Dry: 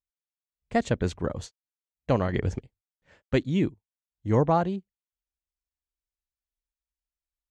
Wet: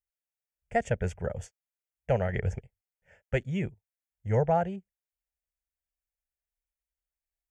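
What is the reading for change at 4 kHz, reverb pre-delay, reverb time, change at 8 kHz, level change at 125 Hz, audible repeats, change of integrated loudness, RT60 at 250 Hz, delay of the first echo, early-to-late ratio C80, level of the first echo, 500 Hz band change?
-9.0 dB, no reverb, no reverb, no reading, -2.5 dB, no echo, -3.0 dB, no reverb, no echo, no reverb, no echo, -2.0 dB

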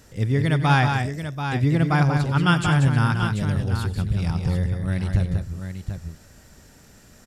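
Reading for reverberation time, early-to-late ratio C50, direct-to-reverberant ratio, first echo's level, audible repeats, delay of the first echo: no reverb, no reverb, no reverb, -16.0 dB, 3, 91 ms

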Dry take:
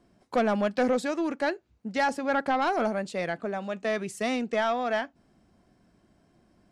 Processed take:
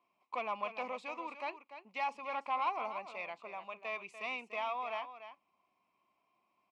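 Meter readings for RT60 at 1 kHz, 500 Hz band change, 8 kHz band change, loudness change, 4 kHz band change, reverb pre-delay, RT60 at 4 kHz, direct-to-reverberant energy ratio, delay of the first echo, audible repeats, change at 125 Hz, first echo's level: no reverb, -16.0 dB, under -20 dB, -11.0 dB, -10.5 dB, no reverb, no reverb, no reverb, 293 ms, 1, under -25 dB, -11.0 dB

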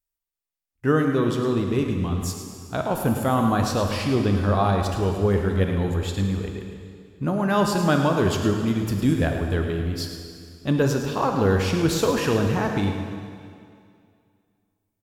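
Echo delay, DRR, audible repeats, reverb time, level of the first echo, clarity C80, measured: 108 ms, 3.0 dB, 1, 2.3 s, -10.5 dB, 4.5 dB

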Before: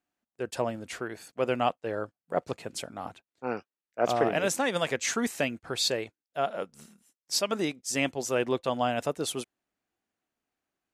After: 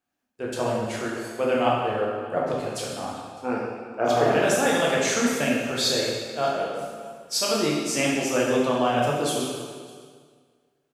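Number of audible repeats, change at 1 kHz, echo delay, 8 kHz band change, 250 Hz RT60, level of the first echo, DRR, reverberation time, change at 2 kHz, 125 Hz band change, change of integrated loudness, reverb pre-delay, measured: 1, +6.0 dB, 606 ms, +5.0 dB, 1.9 s, -22.5 dB, -5.0 dB, 1.9 s, +6.0 dB, +7.0 dB, +6.0 dB, 9 ms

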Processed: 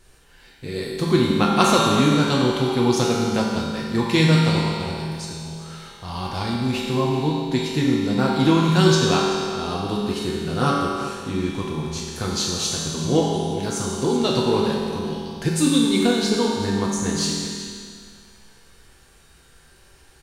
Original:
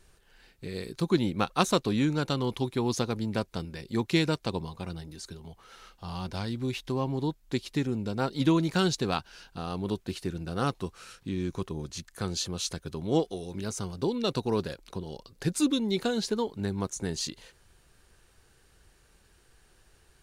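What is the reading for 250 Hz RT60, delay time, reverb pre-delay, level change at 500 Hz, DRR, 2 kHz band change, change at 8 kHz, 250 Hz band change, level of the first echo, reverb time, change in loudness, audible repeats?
2.1 s, 381 ms, 5 ms, +9.5 dB, -4.5 dB, +10.0 dB, +10.5 dB, +9.5 dB, -12.5 dB, 2.1 s, +9.5 dB, 1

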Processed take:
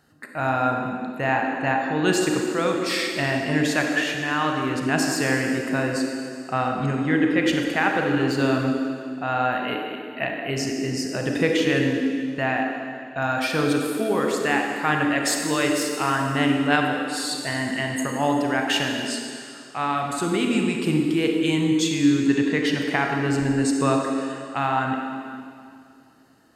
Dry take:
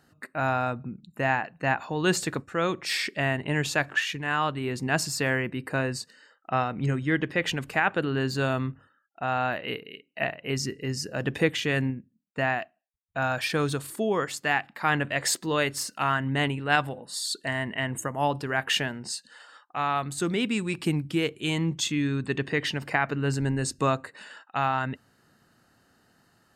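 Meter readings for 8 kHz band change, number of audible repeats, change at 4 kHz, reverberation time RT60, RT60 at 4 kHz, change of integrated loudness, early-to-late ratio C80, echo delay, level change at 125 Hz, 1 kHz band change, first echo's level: +3.0 dB, no echo, +3.0 dB, 2.3 s, 2.2 s, +4.5 dB, 3.0 dB, no echo, +1.0 dB, +4.0 dB, no echo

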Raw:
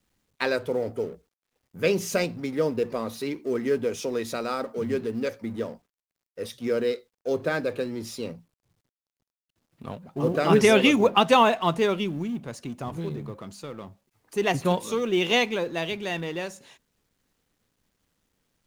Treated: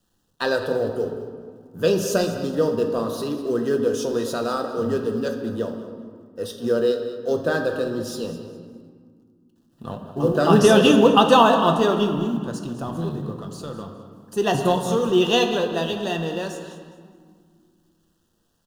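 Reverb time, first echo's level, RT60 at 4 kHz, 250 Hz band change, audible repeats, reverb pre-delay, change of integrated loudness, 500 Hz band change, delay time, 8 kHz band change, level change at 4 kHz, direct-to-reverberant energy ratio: 1.9 s, -14.0 dB, 1.1 s, +5.5 dB, 2, 6 ms, +4.5 dB, +4.5 dB, 206 ms, +4.0 dB, +3.5 dB, 4.0 dB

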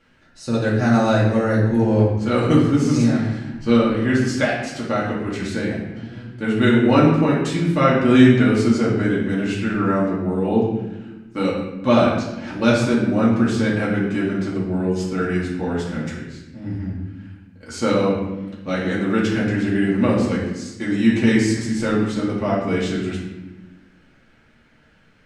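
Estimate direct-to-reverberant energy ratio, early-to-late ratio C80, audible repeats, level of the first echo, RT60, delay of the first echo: -7.0 dB, 5.0 dB, no echo, no echo, 1.1 s, no echo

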